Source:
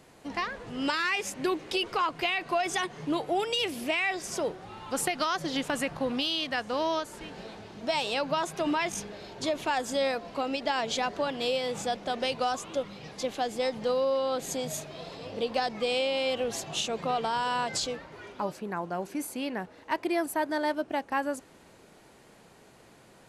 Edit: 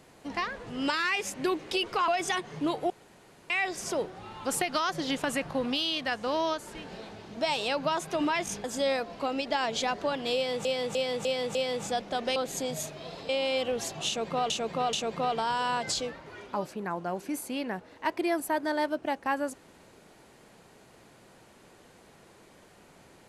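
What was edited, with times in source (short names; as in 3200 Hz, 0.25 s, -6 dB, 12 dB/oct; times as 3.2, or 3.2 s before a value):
2.08–2.54 cut
3.36–3.96 room tone
9.1–9.79 cut
11.5–11.8 loop, 5 plays
12.31–14.3 cut
15.23–16.01 cut
16.79–17.22 loop, 3 plays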